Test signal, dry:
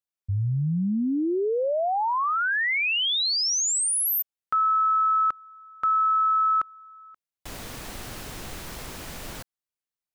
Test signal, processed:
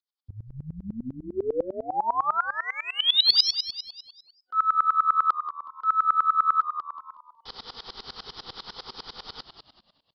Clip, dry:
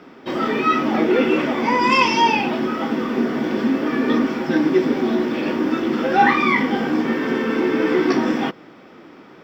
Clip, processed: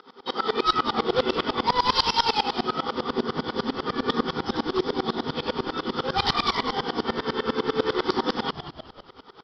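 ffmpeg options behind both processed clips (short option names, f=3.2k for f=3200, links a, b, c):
-filter_complex "[0:a]bass=f=250:g=-14,treble=f=4k:g=12,bandreject=f=60:t=h:w=6,bandreject=f=120:t=h:w=6,bandreject=f=180:t=h:w=6,bandreject=f=240:t=h:w=6,bandreject=f=300:t=h:w=6,bandreject=f=360:t=h:w=6,aresample=11025,aeval=exprs='0.168*(abs(mod(val(0)/0.168+3,4)-2)-1)':c=same,aresample=44100,acontrast=28,superequalizer=6b=0.398:8b=0.282:11b=0.398:12b=0.282,asplit=2[a][b];[b]asplit=5[c][d][e][f][g];[c]adelay=184,afreqshift=-77,volume=-9dB[h];[d]adelay=368,afreqshift=-154,volume=-16.3dB[i];[e]adelay=552,afreqshift=-231,volume=-23.7dB[j];[f]adelay=736,afreqshift=-308,volume=-31dB[k];[g]adelay=920,afreqshift=-385,volume=-38.3dB[l];[h][i][j][k][l]amix=inputs=5:normalize=0[m];[a][m]amix=inputs=2:normalize=0,aeval=exprs='val(0)*pow(10,-24*if(lt(mod(-10*n/s,1),2*abs(-10)/1000),1-mod(-10*n/s,1)/(2*abs(-10)/1000),(mod(-10*n/s,1)-2*abs(-10)/1000)/(1-2*abs(-10)/1000))/20)':c=same,volume=1dB"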